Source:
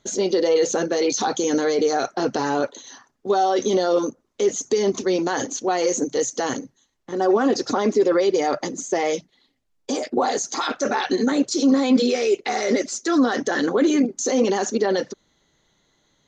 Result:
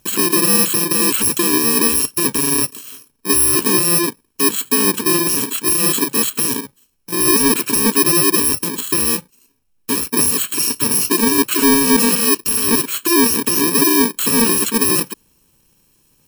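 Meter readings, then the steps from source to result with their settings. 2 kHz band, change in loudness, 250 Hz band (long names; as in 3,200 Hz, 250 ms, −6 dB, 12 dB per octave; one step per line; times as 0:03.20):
+6.5 dB, +7.5 dB, +3.5 dB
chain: samples in bit-reversed order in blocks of 64 samples
sine wavefolder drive 4 dB, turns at −7.5 dBFS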